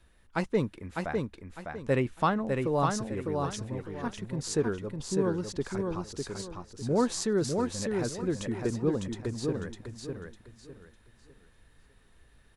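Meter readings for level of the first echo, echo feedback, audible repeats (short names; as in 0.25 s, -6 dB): -4.0 dB, 29%, 3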